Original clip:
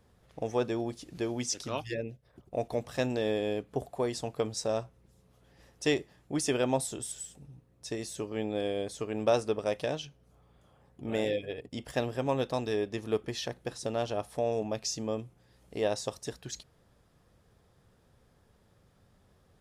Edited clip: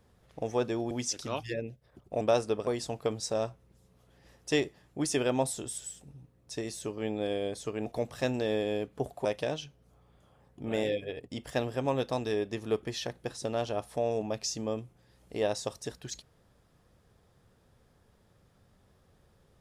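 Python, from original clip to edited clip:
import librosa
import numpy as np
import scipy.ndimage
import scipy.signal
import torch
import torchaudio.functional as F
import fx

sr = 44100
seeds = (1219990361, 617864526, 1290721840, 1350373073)

y = fx.edit(x, sr, fx.cut(start_s=0.91, length_s=0.41),
    fx.swap(start_s=2.62, length_s=1.39, other_s=9.2, other_length_s=0.46), tone=tone)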